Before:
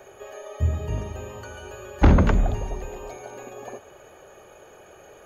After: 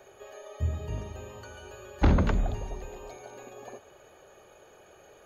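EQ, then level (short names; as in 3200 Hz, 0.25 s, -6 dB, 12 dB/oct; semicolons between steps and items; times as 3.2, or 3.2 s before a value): bell 4100 Hz +5.5 dB 0.59 oct; -6.5 dB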